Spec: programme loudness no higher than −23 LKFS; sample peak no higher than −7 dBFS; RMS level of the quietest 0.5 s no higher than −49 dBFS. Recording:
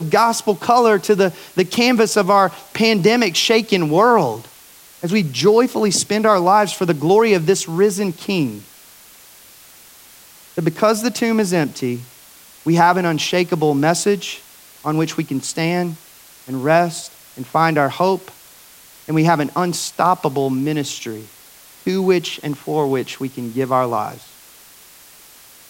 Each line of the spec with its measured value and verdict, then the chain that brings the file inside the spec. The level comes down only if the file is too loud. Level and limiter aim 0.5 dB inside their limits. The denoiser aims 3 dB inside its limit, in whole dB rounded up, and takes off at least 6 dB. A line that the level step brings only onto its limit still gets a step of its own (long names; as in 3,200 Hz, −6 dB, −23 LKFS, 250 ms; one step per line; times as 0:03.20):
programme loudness −17.0 LKFS: out of spec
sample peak −2.0 dBFS: out of spec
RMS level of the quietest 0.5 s −45 dBFS: out of spec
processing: level −6.5 dB